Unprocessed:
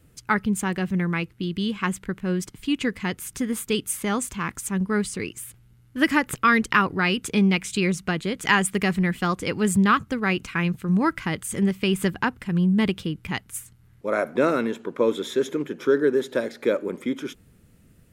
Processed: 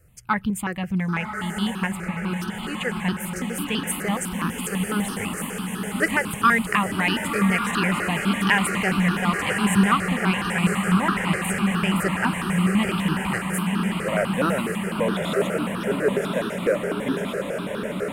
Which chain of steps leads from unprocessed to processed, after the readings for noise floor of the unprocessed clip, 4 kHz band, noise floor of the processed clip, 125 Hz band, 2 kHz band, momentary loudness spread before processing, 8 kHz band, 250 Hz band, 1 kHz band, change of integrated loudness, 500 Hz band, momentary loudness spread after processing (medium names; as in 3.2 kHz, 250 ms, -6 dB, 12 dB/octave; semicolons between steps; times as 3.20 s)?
-56 dBFS, +2.0 dB, -32 dBFS, +2.0 dB, +2.0 dB, 9 LU, +1.0 dB, +0.5 dB, +2.0 dB, +0.5 dB, -1.0 dB, 8 LU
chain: on a send: echo that smears into a reverb 1068 ms, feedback 75%, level -4 dB; on the sum: stepped phaser 12 Hz 940–2100 Hz; trim +2 dB